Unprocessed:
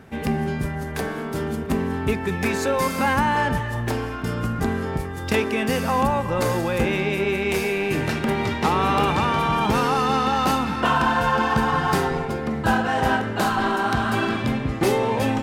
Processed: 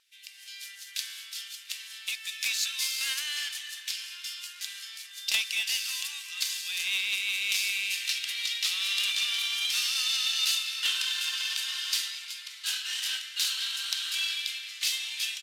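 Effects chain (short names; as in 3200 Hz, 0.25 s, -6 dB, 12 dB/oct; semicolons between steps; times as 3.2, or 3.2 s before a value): median filter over 5 samples; inverse Chebyshev high-pass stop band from 570 Hz, stop band 80 dB; AGC gain up to 13 dB; on a send: tape echo 0.353 s, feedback 74%, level -17 dB, low-pass 5600 Hz; on the sum: downsampling 32000 Hz; Doppler distortion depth 0.49 ms; gain -2.5 dB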